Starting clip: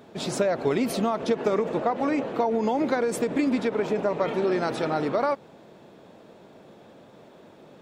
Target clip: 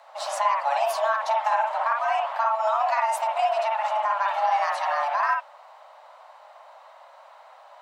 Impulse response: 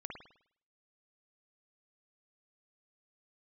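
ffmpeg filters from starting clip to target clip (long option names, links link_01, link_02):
-filter_complex "[0:a]afreqshift=430[link_01];[1:a]atrim=start_sample=2205,atrim=end_sample=3969[link_02];[link_01][link_02]afir=irnorm=-1:irlink=0,volume=3.5dB"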